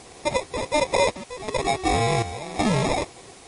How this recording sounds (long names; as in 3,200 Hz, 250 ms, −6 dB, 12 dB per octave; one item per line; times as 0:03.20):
aliases and images of a low sample rate 1,500 Hz, jitter 0%
sample-and-hold tremolo 2.7 Hz, depth 80%
a quantiser's noise floor 8 bits, dither triangular
MP3